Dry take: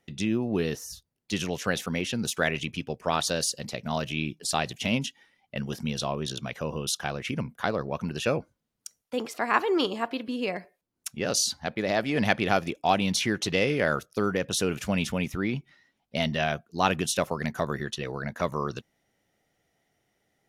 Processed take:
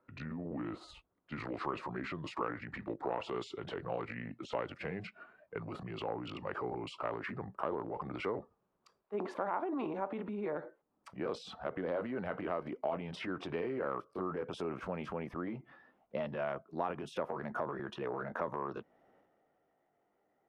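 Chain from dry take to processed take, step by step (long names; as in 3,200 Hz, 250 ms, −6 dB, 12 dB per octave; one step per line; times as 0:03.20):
pitch glide at a constant tempo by −6 semitones ending unshifted
high shelf with overshoot 1,500 Hz −7.5 dB, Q 1.5
transient designer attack −4 dB, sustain +8 dB
downward compressor 12 to 1, threshold −33 dBFS, peak gain reduction 15.5 dB
three-way crossover with the lows and the highs turned down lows −14 dB, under 240 Hz, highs −23 dB, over 2,700 Hz
level +2 dB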